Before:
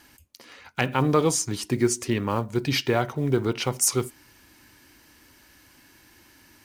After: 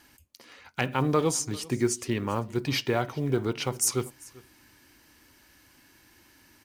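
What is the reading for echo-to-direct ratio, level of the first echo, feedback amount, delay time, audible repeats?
−22.5 dB, −22.5 dB, repeats not evenly spaced, 393 ms, 1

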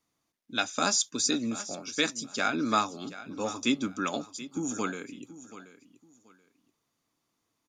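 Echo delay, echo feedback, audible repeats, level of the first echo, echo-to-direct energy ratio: 730 ms, 24%, 2, −15.5 dB, −15.5 dB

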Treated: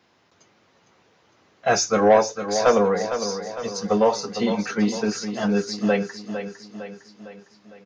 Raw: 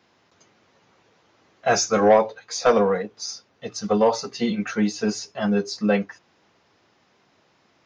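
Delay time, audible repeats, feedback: 456 ms, 5, 52%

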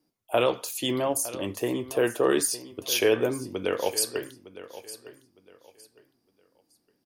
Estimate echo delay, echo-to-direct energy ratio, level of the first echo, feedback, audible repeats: 909 ms, −15.0 dB, −15.5 dB, 26%, 2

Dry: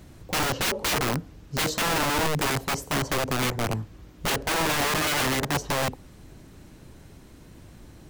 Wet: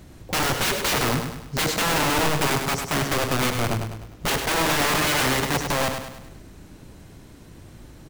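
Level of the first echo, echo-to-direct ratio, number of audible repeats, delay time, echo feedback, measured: −6.5 dB, −5.5 dB, 5, 101 ms, 47%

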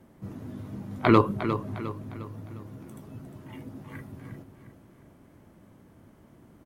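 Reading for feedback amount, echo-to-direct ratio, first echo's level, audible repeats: 43%, −9.0 dB, −10.0 dB, 4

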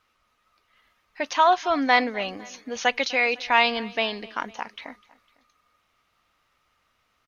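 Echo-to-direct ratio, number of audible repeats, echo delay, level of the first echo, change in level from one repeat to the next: −20.5 dB, 2, 252 ms, −22.0 dB, −4.5 dB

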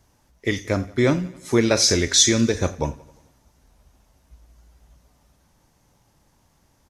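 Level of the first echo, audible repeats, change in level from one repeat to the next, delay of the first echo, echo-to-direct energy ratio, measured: −20.0 dB, 4, −4.5 dB, 88 ms, −18.0 dB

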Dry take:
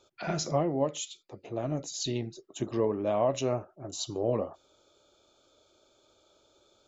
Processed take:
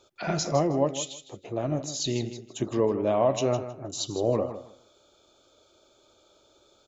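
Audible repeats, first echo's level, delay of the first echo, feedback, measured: 2, −12.0 dB, 158 ms, 20%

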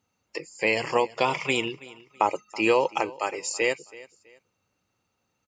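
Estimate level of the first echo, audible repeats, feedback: −20.0 dB, 2, 30%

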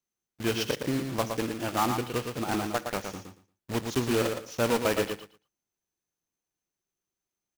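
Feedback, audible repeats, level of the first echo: 18%, 2, −6.0 dB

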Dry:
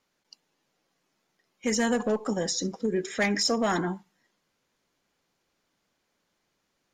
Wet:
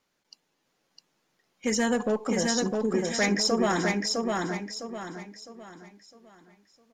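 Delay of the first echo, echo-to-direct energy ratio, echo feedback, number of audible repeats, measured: 657 ms, −2.5 dB, 37%, 4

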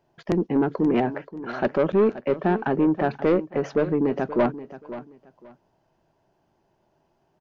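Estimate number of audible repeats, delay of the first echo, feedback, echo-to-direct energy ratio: 2, 528 ms, 23%, −14.5 dB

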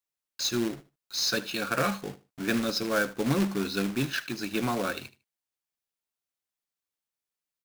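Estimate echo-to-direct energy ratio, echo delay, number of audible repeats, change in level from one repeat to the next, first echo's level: −17.5 dB, 76 ms, 2, −14.0 dB, −17.5 dB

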